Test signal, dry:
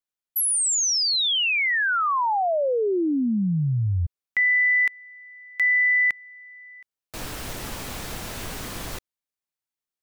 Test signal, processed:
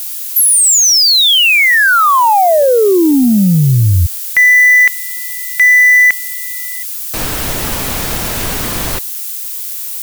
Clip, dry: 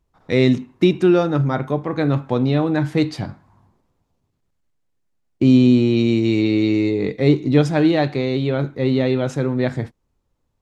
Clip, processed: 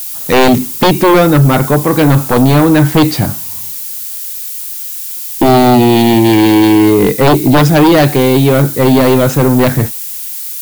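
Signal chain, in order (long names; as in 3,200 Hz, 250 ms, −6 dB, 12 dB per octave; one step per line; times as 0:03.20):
background noise violet −36 dBFS
sine wavefolder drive 12 dB, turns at −1.5 dBFS
level −1.5 dB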